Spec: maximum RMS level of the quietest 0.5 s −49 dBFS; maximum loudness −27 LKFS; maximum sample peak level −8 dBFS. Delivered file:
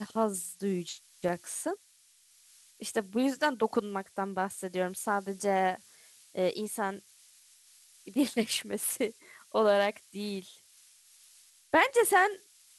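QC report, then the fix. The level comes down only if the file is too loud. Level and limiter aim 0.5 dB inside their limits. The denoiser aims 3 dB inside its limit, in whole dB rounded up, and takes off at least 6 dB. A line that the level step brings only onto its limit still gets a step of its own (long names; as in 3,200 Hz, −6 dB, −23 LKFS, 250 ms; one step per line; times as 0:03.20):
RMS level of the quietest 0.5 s −63 dBFS: in spec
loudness −30.5 LKFS: in spec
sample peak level −12.0 dBFS: in spec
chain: no processing needed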